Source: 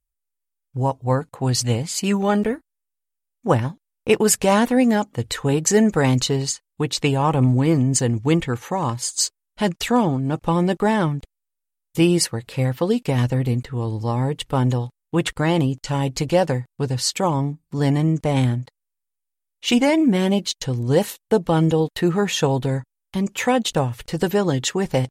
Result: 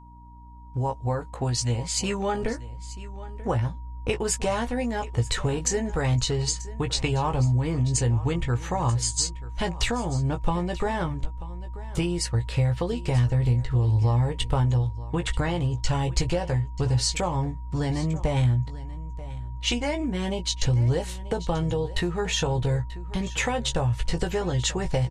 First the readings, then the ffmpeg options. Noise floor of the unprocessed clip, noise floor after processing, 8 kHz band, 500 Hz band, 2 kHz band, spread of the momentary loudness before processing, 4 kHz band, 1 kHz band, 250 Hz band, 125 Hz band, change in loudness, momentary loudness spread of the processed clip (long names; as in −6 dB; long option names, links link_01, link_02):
−80 dBFS, −37 dBFS, −4.5 dB, −8.0 dB, −5.0 dB, 8 LU, −3.5 dB, −6.5 dB, −10.0 dB, −2.0 dB, −5.5 dB, 9 LU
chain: -filter_complex "[0:a]lowpass=frequency=9300:width=0.5412,lowpass=frequency=9300:width=1.3066,asplit=2[link_01][link_02];[link_02]adelay=17,volume=-6.5dB[link_03];[link_01][link_03]amix=inputs=2:normalize=0,acompressor=threshold=-22dB:ratio=6,aeval=exprs='val(0)+0.00447*(sin(2*PI*60*n/s)+sin(2*PI*2*60*n/s)/2+sin(2*PI*3*60*n/s)/3+sin(2*PI*4*60*n/s)/4+sin(2*PI*5*60*n/s)/5)':channel_layout=same,asubboost=boost=10.5:cutoff=65,asplit=2[link_04][link_05];[link_05]aecho=0:1:936:0.141[link_06];[link_04][link_06]amix=inputs=2:normalize=0,aeval=exprs='val(0)+0.00316*sin(2*PI*950*n/s)':channel_layout=same"